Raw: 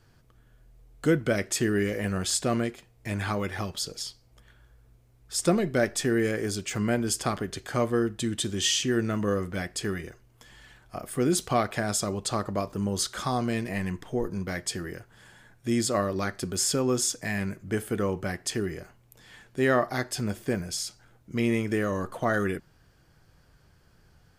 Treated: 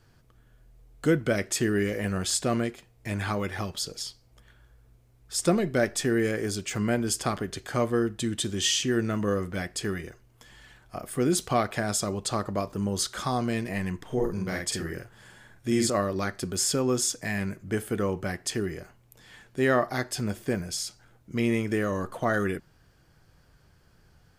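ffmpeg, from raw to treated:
ffmpeg -i in.wav -filter_complex "[0:a]asettb=1/sr,asplit=3[link_01][link_02][link_03];[link_01]atrim=end=14.044[link_04];[link_02]atrim=start=14.04:end=15.9,asetpts=PTS-STARTPTS,afade=type=in:duration=0.004:curve=qsin,afade=type=out:start_time=1.856:duration=0.004:curve=qsin,asplit=2[link_05][link_06];[link_06]adelay=48,volume=-3dB[link_07];[link_05][link_07]amix=inputs=2:normalize=0,atrim=end_sample=82026[link_08];[link_03]atrim=start=15.896[link_09];[link_04][link_08]acrossfade=duration=0.004:curve1=hsin:curve2=qsin[link_10];[link_10][link_09]acrossfade=duration=0.004:curve1=qsin:curve2=hsin" out.wav

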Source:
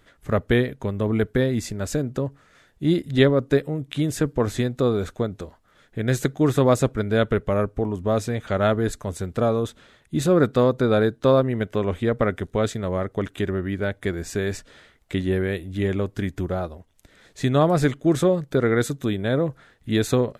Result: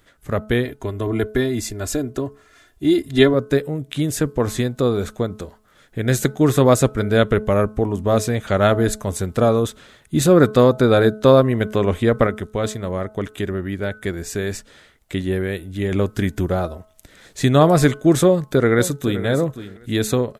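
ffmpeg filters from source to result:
ffmpeg -i in.wav -filter_complex "[0:a]asettb=1/sr,asplit=3[link_01][link_02][link_03];[link_01]atrim=end=0.654[link_04];[link_02]atrim=start=0.65:end=3.34,asetpts=PTS-STARTPTS,afade=type=in:duration=0.004:curve=qsin,afade=type=out:start_time=2.686:duration=0.004:curve=qsin,aecho=1:1:2.9:0.72,atrim=end_sample=118629[link_05];[link_03]atrim=start=3.336[link_06];[link_04][link_05]acrossfade=duration=0.004:curve1=hsin:curve2=qsin[link_07];[link_07][link_06]acrossfade=duration=0.004:curve1=qsin:curve2=hsin,asplit=2[link_08][link_09];[link_09]afade=type=in:start_time=18.26:duration=0.01,afade=type=out:start_time=19.24:duration=0.01,aecho=0:1:520|1040:0.251189|0.0376783[link_10];[link_08][link_10]amix=inputs=2:normalize=0,asplit=3[link_11][link_12][link_13];[link_11]atrim=end=12.272[link_14];[link_12]atrim=start=12.268:end=15.922,asetpts=PTS-STARTPTS,volume=-5dB[link_15];[link_13]atrim=start=15.918[link_16];[link_14][link_15]acrossfade=duration=0.004:curve1=hsin:curve2=hsin[link_17];[link_17][link_16]acrossfade=duration=0.004:curve1=hsin:curve2=hsin,highshelf=frequency=7000:gain=8,bandreject=frequency=214.5:width_type=h:width=4,bandreject=frequency=429:width_type=h:width=4,bandreject=frequency=643.5:width_type=h:width=4,bandreject=frequency=858:width_type=h:width=4,bandreject=frequency=1072.5:width_type=h:width=4,bandreject=frequency=1287:width_type=h:width=4,bandreject=frequency=1501.5:width_type=h:width=4,dynaudnorm=framelen=430:gausssize=13:maxgain=11.5dB" out.wav

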